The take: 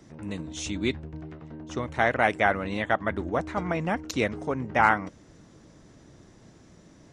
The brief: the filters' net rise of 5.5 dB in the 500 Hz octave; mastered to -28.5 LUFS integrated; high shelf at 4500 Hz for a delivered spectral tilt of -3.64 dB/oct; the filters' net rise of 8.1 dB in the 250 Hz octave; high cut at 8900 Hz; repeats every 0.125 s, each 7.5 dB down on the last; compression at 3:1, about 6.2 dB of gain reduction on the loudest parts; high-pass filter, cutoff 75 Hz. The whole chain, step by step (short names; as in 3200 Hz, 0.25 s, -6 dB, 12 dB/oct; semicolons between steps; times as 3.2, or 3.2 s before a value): HPF 75 Hz; LPF 8900 Hz; bell 250 Hz +9 dB; bell 500 Hz +5 dB; high shelf 4500 Hz -8.5 dB; compressor 3:1, threshold -22 dBFS; feedback echo 0.125 s, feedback 42%, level -7.5 dB; gain -1.5 dB